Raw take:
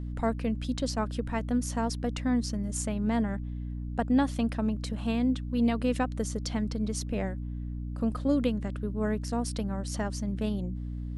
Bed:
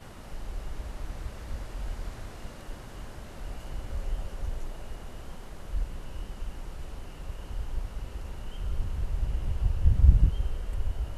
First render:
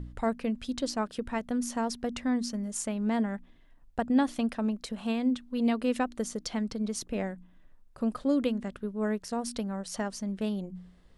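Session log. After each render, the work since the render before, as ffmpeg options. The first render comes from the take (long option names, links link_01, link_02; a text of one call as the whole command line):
ffmpeg -i in.wav -af "bandreject=frequency=60:width_type=h:width=4,bandreject=frequency=120:width_type=h:width=4,bandreject=frequency=180:width_type=h:width=4,bandreject=frequency=240:width_type=h:width=4,bandreject=frequency=300:width_type=h:width=4" out.wav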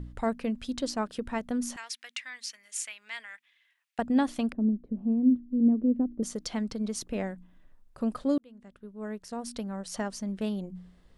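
ffmpeg -i in.wav -filter_complex "[0:a]asettb=1/sr,asplit=3[link_01][link_02][link_03];[link_01]atrim=end=1.764[link_04];[link_02]atrim=start=1.76:end=3.99,asetpts=PTS-STARTPTS,afade=type=in:duration=0.004:curve=qsin,afade=type=out:start_time=2.226:duration=0.004:curve=qsin,highpass=frequency=2200:width_type=q:width=2.2[link_05];[link_03]atrim=start=3.986[link_06];[link_04][link_05]acrossfade=duration=0.004:curve1=hsin:curve2=qsin[link_07];[link_07][link_06]acrossfade=duration=0.004:curve1=qsin:curve2=hsin,asettb=1/sr,asplit=3[link_08][link_09][link_10];[link_08]atrim=end=4.524[link_11];[link_09]atrim=start=4.52:end=6.23,asetpts=PTS-STARTPTS,afade=type=in:duration=0.004:curve=qsin,afade=type=out:start_time=1.706:duration=0.004:curve=qsin,lowpass=frequency=300:width_type=q:width=1.8[link_12];[link_10]atrim=start=6.226[link_13];[link_11][link_12]acrossfade=duration=0.004:curve1=hsin:curve2=qsin[link_14];[link_14][link_13]acrossfade=duration=0.004:curve1=qsin:curve2=hsin,asplit=2[link_15][link_16];[link_15]atrim=end=8.38,asetpts=PTS-STARTPTS,afade=type=out:start_time=8.376:duration=0.004:curve=hsin[link_17];[link_16]atrim=start=8.38,asetpts=PTS-STARTPTS,afade=type=in:duration=1.6[link_18];[link_17][link_18]concat=n=2:v=0:a=1" out.wav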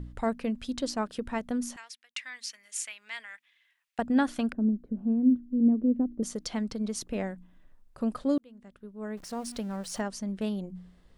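ffmpeg -i in.wav -filter_complex "[0:a]asettb=1/sr,asplit=3[link_01][link_02][link_03];[link_01]atrim=end=4.094[link_04];[link_02]atrim=start=4.09:end=5.51,asetpts=PTS-STARTPTS,afade=type=in:duration=0.004:curve=qsin,afade=type=out:start_time=1.416:duration=0.004:curve=qsin,equalizer=frequency=1500:width_type=o:width=0.33:gain=9[link_05];[link_03]atrim=start=5.506[link_06];[link_04][link_05]acrossfade=duration=0.004:curve1=hsin:curve2=qsin[link_07];[link_07][link_06]acrossfade=duration=0.004:curve1=qsin:curve2=hsin,asettb=1/sr,asplit=3[link_08][link_09][link_10];[link_08]atrim=end=9.174[link_11];[link_09]atrim=start=9.17:end=10.01,asetpts=PTS-STARTPTS,afade=type=in:duration=0.004:curve=qsin,afade=type=out:start_time=0.836:duration=0.004:curve=qsin,aeval=exprs='val(0)+0.5*0.00501*sgn(val(0))':channel_layout=same[link_12];[link_10]atrim=start=10.006[link_13];[link_11][link_12]acrossfade=duration=0.004:curve1=hsin:curve2=qsin[link_14];[link_14][link_13]acrossfade=duration=0.004:curve1=qsin:curve2=hsin,asplit=2[link_15][link_16];[link_15]atrim=end=2.16,asetpts=PTS-STARTPTS,afade=type=out:start_time=1.55:duration=0.61[link_17];[link_16]atrim=start=2.16,asetpts=PTS-STARTPTS,afade=type=in:duration=0.004:curve=hsin[link_18];[link_17][link_18]concat=n=2:v=0:a=1" out.wav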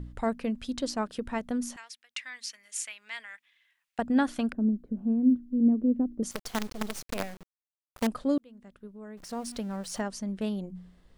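ffmpeg -i in.wav -filter_complex "[0:a]asettb=1/sr,asplit=3[link_01][link_02][link_03];[link_01]atrim=end=6.314[link_04];[link_02]atrim=start=6.31:end=8.07,asetpts=PTS-STARTPTS,afade=type=in:duration=0.004:curve=qsin,afade=type=out:start_time=1.756:duration=0.004:curve=qsin,acrusher=bits=5:dc=4:mix=0:aa=0.000001[link_05];[link_03]atrim=start=8.066[link_06];[link_04][link_05]acrossfade=duration=0.004:curve1=hsin:curve2=qsin[link_07];[link_07][link_06]acrossfade=duration=0.004:curve1=qsin:curve2=hsin,asettb=1/sr,asplit=3[link_08][link_09][link_10];[link_08]atrim=end=8.874[link_11];[link_09]atrim=start=8.87:end=9.29,asetpts=PTS-STARTPTS,afade=type=in:duration=0.004:curve=qsin,afade=type=out:start_time=0.416:duration=0.004:curve=qsin,acompressor=threshold=-42dB:ratio=3:attack=3.2:release=140:knee=1:detection=peak[link_12];[link_10]atrim=start=9.286[link_13];[link_11][link_12]acrossfade=duration=0.004:curve1=hsin:curve2=qsin[link_14];[link_14][link_13]acrossfade=duration=0.004:curve1=qsin:curve2=hsin" out.wav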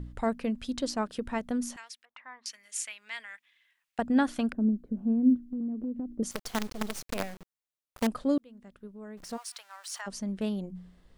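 ffmpeg -i in.wav -filter_complex "[0:a]asettb=1/sr,asplit=3[link_01][link_02][link_03];[link_01]atrim=end=2.054[link_04];[link_02]atrim=start=2.05:end=2.46,asetpts=PTS-STARTPTS,afade=type=in:duration=0.004:curve=qsin,afade=type=out:start_time=0.406:duration=0.004:curve=qsin,lowpass=frequency=980:width_type=q:width=3.1[link_05];[link_03]atrim=start=2.456[link_06];[link_04][link_05]acrossfade=duration=0.004:curve1=hsin:curve2=qsin[link_07];[link_07][link_06]acrossfade=duration=0.004:curve1=qsin:curve2=hsin,asettb=1/sr,asplit=3[link_08][link_09][link_10];[link_08]atrim=end=5.444[link_11];[link_09]atrim=start=5.44:end=6.17,asetpts=PTS-STARTPTS,afade=type=in:duration=0.004:curve=qsin,afade=type=out:start_time=0.726:duration=0.004:curve=qsin,acompressor=threshold=-31dB:ratio=6:attack=3.2:release=140:knee=1:detection=peak[link_12];[link_10]atrim=start=6.166[link_13];[link_11][link_12]acrossfade=duration=0.004:curve1=hsin:curve2=qsin[link_14];[link_14][link_13]acrossfade=duration=0.004:curve1=qsin:curve2=hsin,asplit=3[link_15][link_16][link_17];[link_15]afade=type=out:start_time=9.36:duration=0.02[link_18];[link_16]highpass=frequency=990:width=0.5412,highpass=frequency=990:width=1.3066,afade=type=in:start_time=9.36:duration=0.02,afade=type=out:start_time=10.06:duration=0.02[link_19];[link_17]afade=type=in:start_time=10.06:duration=0.02[link_20];[link_18][link_19][link_20]amix=inputs=3:normalize=0" out.wav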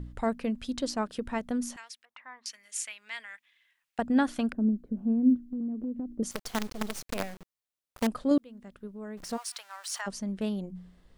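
ffmpeg -i in.wav -filter_complex "[0:a]asplit=3[link_01][link_02][link_03];[link_01]atrim=end=8.312[link_04];[link_02]atrim=start=8.308:end=10.112,asetpts=PTS-STARTPTS,volume=3.5dB[link_05];[link_03]atrim=start=10.108[link_06];[link_04][link_05]acrossfade=duration=0.004:curve1=hsin:curve2=hsin[link_07];[link_07][link_06]acrossfade=duration=0.004:curve1=hsin:curve2=hsin" out.wav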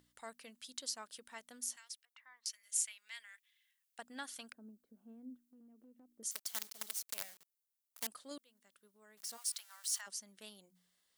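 ffmpeg -i in.wav -af "aderivative,bandreject=frequency=2500:width=19" out.wav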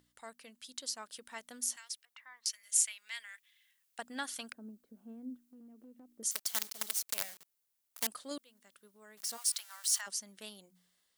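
ffmpeg -i in.wav -af "dynaudnorm=framelen=480:gausssize=5:maxgain=6.5dB" out.wav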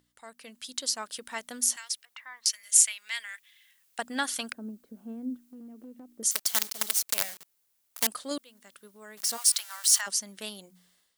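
ffmpeg -i in.wav -af "dynaudnorm=framelen=280:gausssize=3:maxgain=9.5dB" out.wav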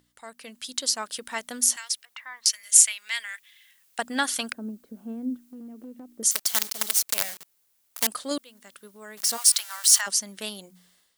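ffmpeg -i in.wav -af "volume=4.5dB,alimiter=limit=-1dB:level=0:latency=1" out.wav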